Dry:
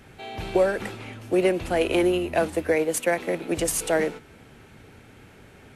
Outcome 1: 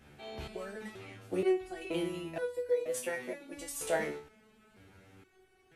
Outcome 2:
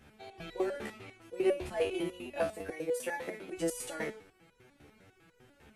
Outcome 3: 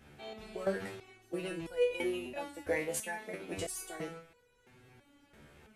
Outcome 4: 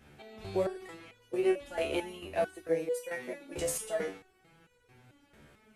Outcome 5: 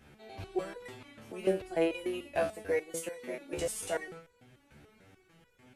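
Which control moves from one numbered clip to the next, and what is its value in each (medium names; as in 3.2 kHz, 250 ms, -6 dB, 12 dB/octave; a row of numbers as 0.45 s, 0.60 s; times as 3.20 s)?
resonator arpeggio, rate: 2.1 Hz, 10 Hz, 3 Hz, 4.5 Hz, 6.8 Hz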